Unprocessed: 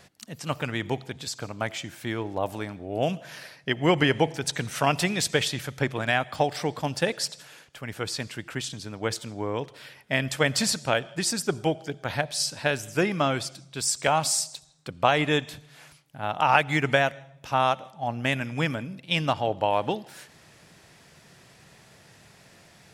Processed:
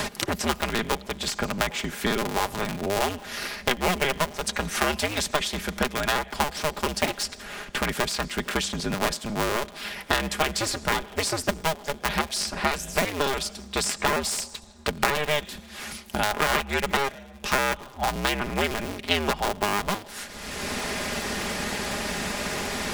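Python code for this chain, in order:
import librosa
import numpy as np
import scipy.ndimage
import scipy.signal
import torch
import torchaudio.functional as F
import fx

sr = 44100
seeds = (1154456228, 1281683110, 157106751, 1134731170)

y = fx.cycle_switch(x, sr, every=2, mode='inverted')
y = y + 0.46 * np.pad(y, (int(4.9 * sr / 1000.0), 0))[:len(y)]
y = fx.band_squash(y, sr, depth_pct=100)
y = y * librosa.db_to_amplitude(-1.0)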